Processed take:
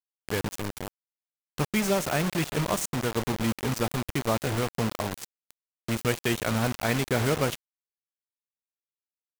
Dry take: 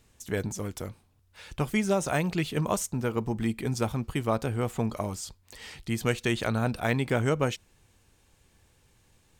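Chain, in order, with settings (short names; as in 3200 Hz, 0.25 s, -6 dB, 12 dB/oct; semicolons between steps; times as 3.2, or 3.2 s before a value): spring tank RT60 3.4 s, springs 53 ms, chirp 60 ms, DRR 16.5 dB; bit-crush 5-bit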